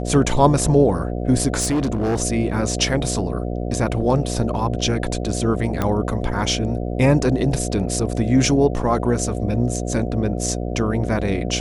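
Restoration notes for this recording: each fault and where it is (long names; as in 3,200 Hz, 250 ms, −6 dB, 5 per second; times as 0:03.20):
mains buzz 60 Hz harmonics 12 −25 dBFS
0:01.59–0:02.20: clipping −16.5 dBFS
0:05.82: click −8 dBFS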